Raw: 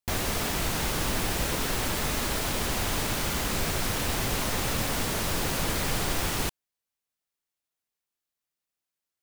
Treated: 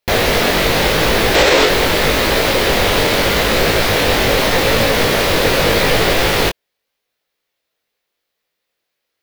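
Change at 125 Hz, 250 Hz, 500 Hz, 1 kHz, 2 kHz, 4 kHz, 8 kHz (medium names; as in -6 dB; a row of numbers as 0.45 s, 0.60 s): +11.0 dB, +13.5 dB, +20.0 dB, +15.0 dB, +17.0 dB, +16.0 dB, +7.5 dB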